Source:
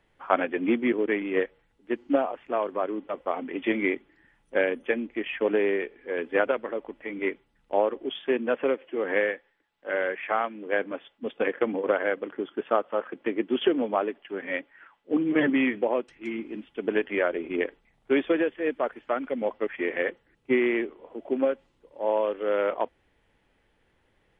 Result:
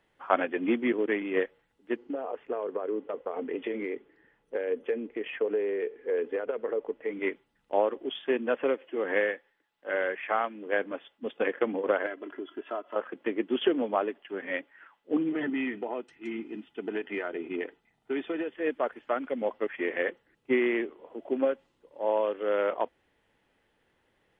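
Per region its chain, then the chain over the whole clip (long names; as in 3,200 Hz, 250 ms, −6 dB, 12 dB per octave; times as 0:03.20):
0:01.96–0:07.11: downward compressor 12 to 1, threshold −29 dBFS + low-pass filter 2,800 Hz 6 dB per octave + parametric band 450 Hz +12.5 dB 0.36 octaves
0:12.06–0:12.96: comb filter 3 ms, depth 87% + downward compressor 2 to 1, threshold −37 dBFS
0:15.29–0:18.53: downward compressor 2.5 to 1, threshold −26 dBFS + notch comb filter 550 Hz
whole clip: low-shelf EQ 90 Hz −11.5 dB; notch filter 2,300 Hz, Q 25; level −1.5 dB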